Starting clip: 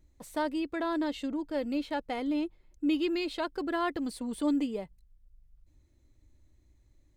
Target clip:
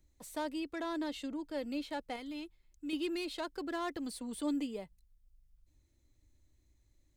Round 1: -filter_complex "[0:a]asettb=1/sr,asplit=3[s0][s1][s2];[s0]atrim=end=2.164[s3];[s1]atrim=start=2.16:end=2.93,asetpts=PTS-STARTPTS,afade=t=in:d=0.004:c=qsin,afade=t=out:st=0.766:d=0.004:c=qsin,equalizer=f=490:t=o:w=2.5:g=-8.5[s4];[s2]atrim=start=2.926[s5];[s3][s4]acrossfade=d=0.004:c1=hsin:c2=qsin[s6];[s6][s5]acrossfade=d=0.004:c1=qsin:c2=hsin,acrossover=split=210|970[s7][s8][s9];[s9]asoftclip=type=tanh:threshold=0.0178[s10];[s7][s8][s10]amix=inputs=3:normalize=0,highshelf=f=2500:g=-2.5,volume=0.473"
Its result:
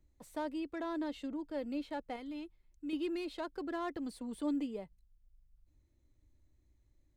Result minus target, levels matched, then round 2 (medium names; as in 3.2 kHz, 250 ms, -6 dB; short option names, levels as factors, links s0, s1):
4 kHz band -6.0 dB
-filter_complex "[0:a]asettb=1/sr,asplit=3[s0][s1][s2];[s0]atrim=end=2.164[s3];[s1]atrim=start=2.16:end=2.93,asetpts=PTS-STARTPTS,afade=t=in:d=0.004:c=qsin,afade=t=out:st=0.766:d=0.004:c=qsin,equalizer=f=490:t=o:w=2.5:g=-8.5[s4];[s2]atrim=start=2.926[s5];[s3][s4]acrossfade=d=0.004:c1=hsin:c2=qsin[s6];[s6][s5]acrossfade=d=0.004:c1=qsin:c2=hsin,acrossover=split=210|970[s7][s8][s9];[s9]asoftclip=type=tanh:threshold=0.0178[s10];[s7][s8][s10]amix=inputs=3:normalize=0,highshelf=f=2500:g=7.5,volume=0.473"